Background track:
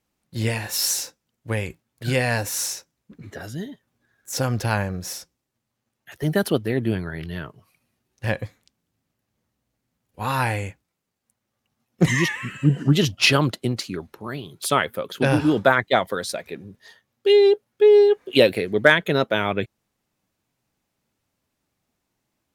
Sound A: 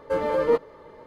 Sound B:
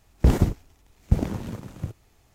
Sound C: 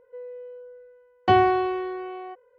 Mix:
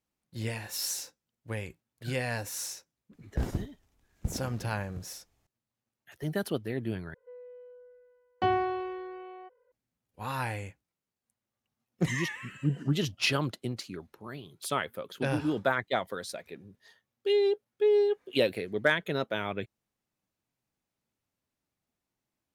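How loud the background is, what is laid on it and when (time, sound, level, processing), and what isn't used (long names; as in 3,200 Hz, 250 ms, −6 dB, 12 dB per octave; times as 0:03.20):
background track −10.5 dB
0:03.13: mix in B −13 dB
0:07.14: overwrite with C −9 dB
not used: A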